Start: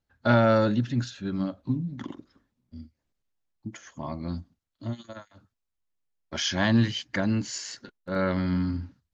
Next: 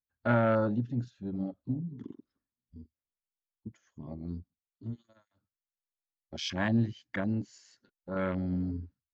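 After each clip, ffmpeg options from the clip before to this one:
ffmpeg -i in.wav -af "afwtdn=0.0316,volume=-5.5dB" out.wav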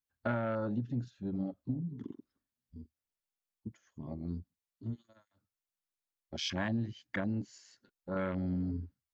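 ffmpeg -i in.wav -af "acompressor=threshold=-30dB:ratio=5" out.wav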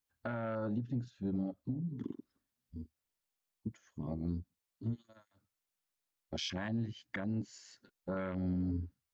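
ffmpeg -i in.wav -af "alimiter=level_in=7dB:limit=-24dB:level=0:latency=1:release=392,volume=-7dB,volume=3.5dB" out.wav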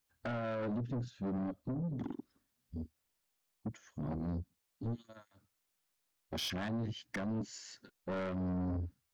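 ffmpeg -i in.wav -af "asoftclip=type=tanh:threshold=-39.5dB,volume=6dB" out.wav

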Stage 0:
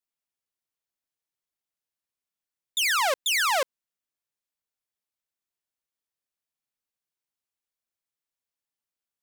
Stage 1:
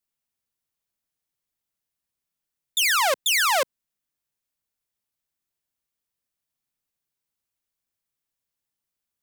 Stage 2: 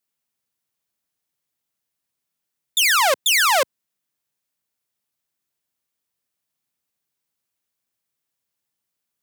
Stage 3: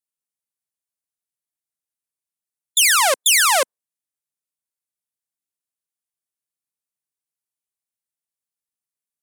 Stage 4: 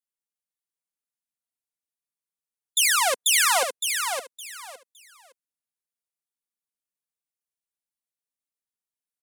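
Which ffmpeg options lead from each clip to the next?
ffmpeg -i in.wav -filter_complex "[0:a]highshelf=frequency=9200:gain=4.5,acrossover=split=240|1400[link_01][link_02][link_03];[link_01]acontrast=69[link_04];[link_04][link_02][link_03]amix=inputs=3:normalize=0,volume=2.5dB" out.wav
ffmpeg -i in.wav -af "highpass=93,volume=4dB" out.wav
ffmpeg -i in.wav -af "afftdn=noise_reduction=14:noise_floor=-36,equalizer=frequency=9500:width_type=o:width=0.97:gain=9" out.wav
ffmpeg -i in.wav -filter_complex "[0:a]aecho=1:1:4.2:0.42,asplit=2[link_01][link_02];[link_02]aecho=0:1:563|1126|1689:0.501|0.11|0.0243[link_03];[link_01][link_03]amix=inputs=2:normalize=0,volume=-6.5dB" out.wav

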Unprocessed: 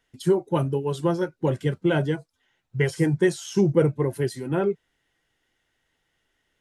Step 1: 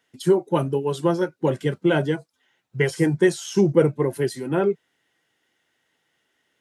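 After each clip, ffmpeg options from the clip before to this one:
ffmpeg -i in.wav -af "highpass=160,volume=3dB" out.wav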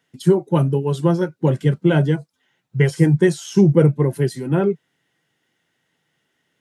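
ffmpeg -i in.wav -af "equalizer=frequency=150:width=1.2:gain=10" out.wav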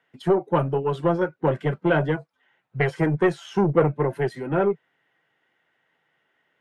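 ffmpeg -i in.wav -filter_complex "[0:a]aeval=exprs='(tanh(3.16*val(0)+0.25)-tanh(0.25))/3.16':channel_layout=same,acrossover=split=450 2700:gain=0.251 1 0.0891[link_01][link_02][link_03];[link_01][link_02][link_03]amix=inputs=3:normalize=0,volume=4.5dB" out.wav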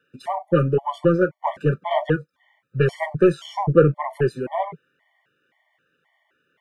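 ffmpeg -i in.wav -af "afftfilt=real='re*gt(sin(2*PI*1.9*pts/sr)*(1-2*mod(floor(b*sr/1024/590),2)),0)':imag='im*gt(sin(2*PI*1.9*pts/sr)*(1-2*mod(floor(b*sr/1024/590),2)),0)':win_size=1024:overlap=0.75,volume=5dB" out.wav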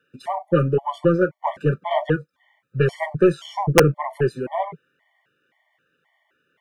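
ffmpeg -i in.wav -af "aeval=exprs='(mod(1.33*val(0)+1,2)-1)/1.33':channel_layout=same" out.wav

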